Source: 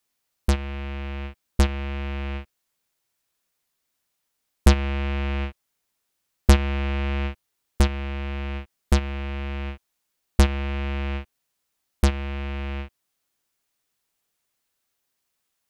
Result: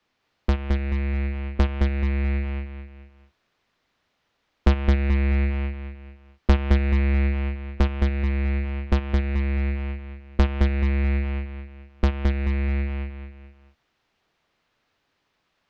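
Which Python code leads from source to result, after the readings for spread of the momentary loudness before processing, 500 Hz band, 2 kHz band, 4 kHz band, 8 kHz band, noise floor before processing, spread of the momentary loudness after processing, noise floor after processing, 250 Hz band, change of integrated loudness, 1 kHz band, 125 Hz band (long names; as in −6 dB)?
14 LU, +0.5 dB, 0.0 dB, −5.5 dB, below −15 dB, −78 dBFS, 14 LU, −74 dBFS, +2.0 dB, +1.5 dB, −2.0 dB, +3.0 dB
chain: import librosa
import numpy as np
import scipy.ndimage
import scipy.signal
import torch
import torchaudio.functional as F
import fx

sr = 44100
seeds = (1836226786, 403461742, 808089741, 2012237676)

y = fx.air_absorb(x, sr, metres=240.0)
y = fx.echo_feedback(y, sr, ms=216, feedback_pct=31, wet_db=-4.0)
y = fx.band_squash(y, sr, depth_pct=40)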